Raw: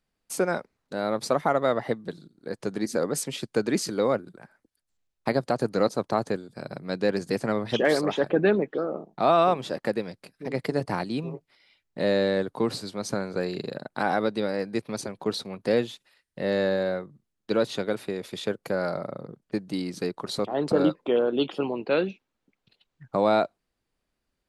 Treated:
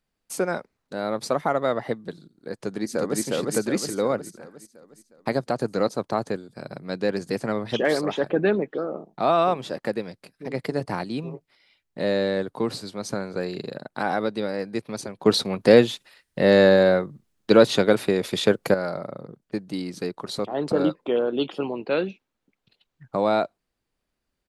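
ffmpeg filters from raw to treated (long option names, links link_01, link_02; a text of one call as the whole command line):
ffmpeg -i in.wav -filter_complex "[0:a]asplit=2[link_01][link_02];[link_02]afade=type=in:start_time=2.61:duration=0.01,afade=type=out:start_time=3.22:duration=0.01,aecho=0:1:360|720|1080|1440|1800|2160|2520:0.944061|0.47203|0.236015|0.118008|0.0590038|0.0295019|0.014751[link_03];[link_01][link_03]amix=inputs=2:normalize=0,asplit=3[link_04][link_05][link_06];[link_04]atrim=end=15.252[link_07];[link_05]atrim=start=15.248:end=18.742,asetpts=PTS-STARTPTS,volume=9.5dB[link_08];[link_06]atrim=start=18.738[link_09];[link_07][link_08]acrossfade=duration=0.004:curve1=hsin:curve2=hsin[link_10];[link_10][link_09]acrossfade=duration=0.004:curve1=hsin:curve2=hsin" out.wav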